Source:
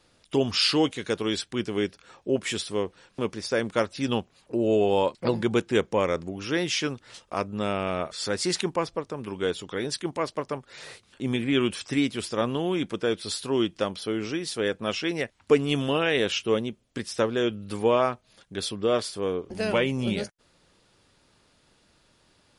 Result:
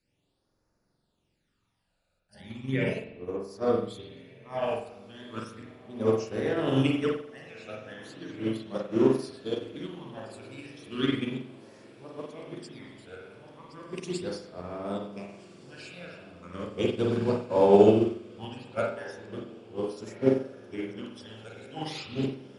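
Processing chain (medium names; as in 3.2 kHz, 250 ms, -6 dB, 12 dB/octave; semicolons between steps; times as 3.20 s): reverse the whole clip; phase shifter stages 12, 0.36 Hz, lowest notch 320–3200 Hz; on a send: echo that smears into a reverb 1475 ms, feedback 62%, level -12 dB; on the sum: spring tank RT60 1 s, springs 45 ms, chirp 75 ms, DRR -2.5 dB; upward expansion 2.5:1, over -27 dBFS; trim +2.5 dB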